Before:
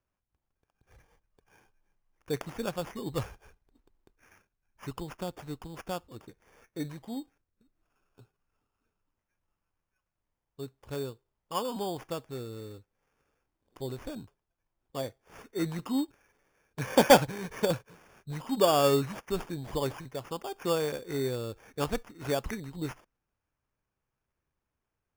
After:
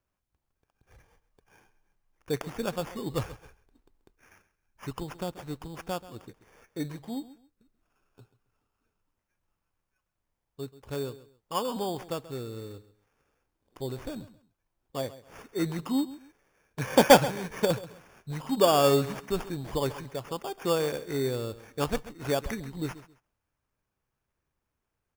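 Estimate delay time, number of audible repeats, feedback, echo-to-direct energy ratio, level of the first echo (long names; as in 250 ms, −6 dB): 134 ms, 2, 25%, −16.0 dB, −16.5 dB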